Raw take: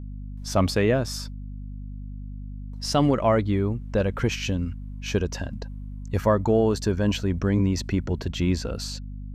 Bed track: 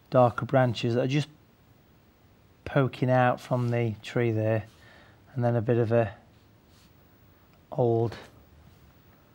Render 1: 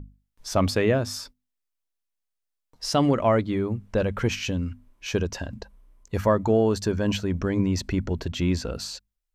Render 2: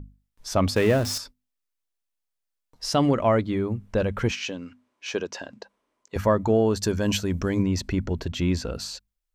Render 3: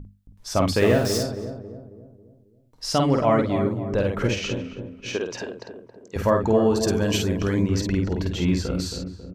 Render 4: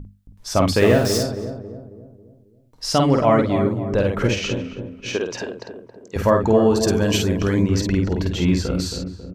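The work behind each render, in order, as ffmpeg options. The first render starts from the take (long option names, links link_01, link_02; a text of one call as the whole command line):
ffmpeg -i in.wav -af "bandreject=frequency=50:width_type=h:width=6,bandreject=frequency=100:width_type=h:width=6,bandreject=frequency=150:width_type=h:width=6,bandreject=frequency=200:width_type=h:width=6,bandreject=frequency=250:width_type=h:width=6" out.wav
ffmpeg -i in.wav -filter_complex "[0:a]asettb=1/sr,asplit=3[link_01][link_02][link_03];[link_01]atrim=end=0.764[link_04];[link_02]atrim=start=0.76:end=1.18,asetpts=PTS-STARTPTS,afade=type=in:duration=0.004:curve=qsin,afade=type=out:start_time=0.416:duration=0.004:curve=qsin,aeval=exprs='val(0)+0.5*0.0355*sgn(val(0))':channel_layout=same[link_05];[link_03]atrim=start=1.176[link_06];[link_04][link_05]acrossfade=duration=0.004:curve1=hsin:curve2=qsin[link_07];[link_07][link_06]acrossfade=duration=0.004:curve1=qsin:curve2=hsin,asettb=1/sr,asplit=3[link_08][link_09][link_10];[link_08]atrim=end=4.314[link_11];[link_09]atrim=start=4.31:end=6.16,asetpts=PTS-STARTPTS,afade=type=in:duration=0.004:curve=qsin,afade=type=out:start_time=1.846:duration=0.004:curve=qsin,highpass=330,lowpass=7300[link_12];[link_10]atrim=start=6.156[link_13];[link_11][link_12]acrossfade=duration=0.004:curve1=hsin:curve2=qsin[link_14];[link_14][link_13]acrossfade=duration=0.004:curve1=qsin:curve2=hsin,asettb=1/sr,asplit=3[link_15][link_16][link_17];[link_15]atrim=end=6.834[link_18];[link_16]atrim=start=6.83:end=7.63,asetpts=PTS-STARTPTS,afade=type=in:duration=0.004:curve=qsin,afade=type=out:start_time=0.796:duration=0.004:curve=qsin,highshelf=frequency=5100:gain=12[link_19];[link_17]atrim=start=7.626[link_20];[link_18][link_19]acrossfade=duration=0.004:curve1=hsin:curve2=qsin[link_21];[link_21][link_20]acrossfade=duration=0.004:curve1=qsin:curve2=hsin" out.wav
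ffmpeg -i in.wav -filter_complex "[0:a]asplit=2[link_01][link_02];[link_02]adelay=50,volume=-4dB[link_03];[link_01][link_03]amix=inputs=2:normalize=0,asplit=2[link_04][link_05];[link_05]adelay=272,lowpass=frequency=820:poles=1,volume=-6.5dB,asplit=2[link_06][link_07];[link_07]adelay=272,lowpass=frequency=820:poles=1,volume=0.51,asplit=2[link_08][link_09];[link_09]adelay=272,lowpass=frequency=820:poles=1,volume=0.51,asplit=2[link_10][link_11];[link_11]adelay=272,lowpass=frequency=820:poles=1,volume=0.51,asplit=2[link_12][link_13];[link_13]adelay=272,lowpass=frequency=820:poles=1,volume=0.51,asplit=2[link_14][link_15];[link_15]adelay=272,lowpass=frequency=820:poles=1,volume=0.51[link_16];[link_06][link_08][link_10][link_12][link_14][link_16]amix=inputs=6:normalize=0[link_17];[link_04][link_17]amix=inputs=2:normalize=0" out.wav
ffmpeg -i in.wav -af "volume=3.5dB" out.wav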